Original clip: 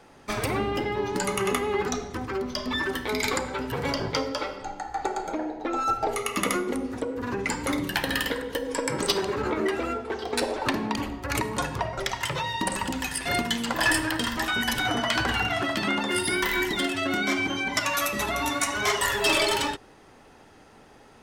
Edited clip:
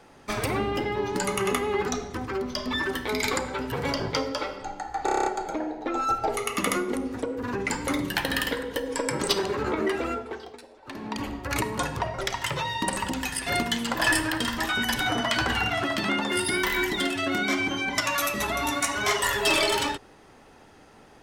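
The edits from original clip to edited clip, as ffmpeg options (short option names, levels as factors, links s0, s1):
-filter_complex "[0:a]asplit=10[s0][s1][s2][s3][s4][s5][s6][s7][s8][s9];[s0]atrim=end=5.082[s10];[s1]atrim=start=5.048:end=5.082[s11];[s2]atrim=start=5.048:end=5.082[s12];[s3]atrim=start=5.048:end=5.082[s13];[s4]atrim=start=5.048:end=5.082[s14];[s5]atrim=start=5.048:end=5.082[s15];[s6]atrim=start=5.048:end=5.082[s16];[s7]atrim=start=5.048:end=10.39,asetpts=PTS-STARTPTS,afade=t=out:st=4.852:d=0.49:silence=0.0749894[s17];[s8]atrim=start=10.39:end=10.63,asetpts=PTS-STARTPTS,volume=0.075[s18];[s9]atrim=start=10.63,asetpts=PTS-STARTPTS,afade=t=in:d=0.49:silence=0.0749894[s19];[s10][s11]acrossfade=d=0.004:c1=hsin:c2=hsin[s20];[s20][s12]acrossfade=d=0.004:c1=hsin:c2=hsin[s21];[s21][s13]acrossfade=d=0.004:c1=hsin:c2=hsin[s22];[s22][s14]acrossfade=d=0.004:c1=hsin:c2=hsin[s23];[s23][s15]acrossfade=d=0.004:c1=hsin:c2=hsin[s24];[s24][s16]acrossfade=d=0.004:c1=hsin:c2=hsin[s25];[s17][s18][s19]concat=n=3:v=0:a=1[s26];[s25][s26]acrossfade=d=0.004:c1=hsin:c2=hsin"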